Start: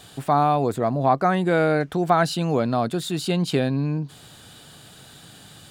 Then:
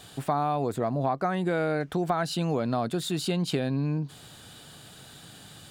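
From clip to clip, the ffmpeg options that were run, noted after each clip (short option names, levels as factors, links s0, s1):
-af "acompressor=threshold=0.0891:ratio=6,volume=0.794"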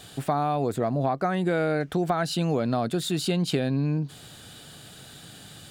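-af "equalizer=f=990:t=o:w=0.54:g=-4,volume=1.33"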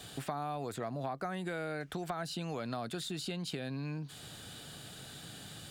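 -filter_complex "[0:a]acrossover=split=81|920|7900[s0][s1][s2][s3];[s0]acompressor=threshold=0.00126:ratio=4[s4];[s1]acompressor=threshold=0.0141:ratio=4[s5];[s2]acompressor=threshold=0.0112:ratio=4[s6];[s3]acompressor=threshold=0.00224:ratio=4[s7];[s4][s5][s6][s7]amix=inputs=4:normalize=0,volume=0.75"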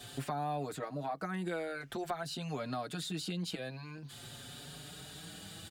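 -filter_complex "[0:a]asplit=2[s0][s1];[s1]adelay=5.3,afreqshift=0.47[s2];[s0][s2]amix=inputs=2:normalize=1,volume=1.41"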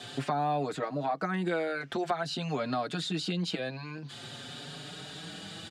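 -af "highpass=140,lowpass=5700,volume=2.24"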